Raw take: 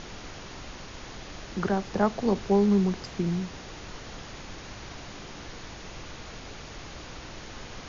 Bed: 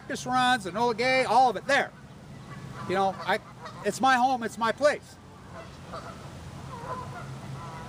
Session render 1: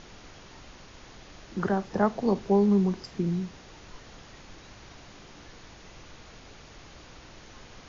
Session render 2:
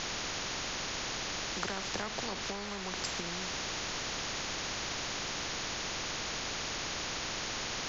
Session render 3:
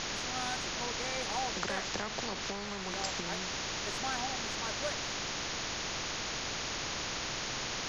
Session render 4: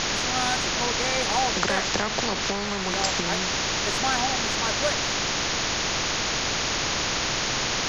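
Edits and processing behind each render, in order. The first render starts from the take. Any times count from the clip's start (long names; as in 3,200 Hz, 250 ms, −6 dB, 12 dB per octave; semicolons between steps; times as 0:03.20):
noise reduction from a noise print 7 dB
downward compressor, threshold −27 dBFS, peak gain reduction 9.5 dB; every bin compressed towards the loudest bin 4 to 1
mix in bed −16.5 dB
level +11 dB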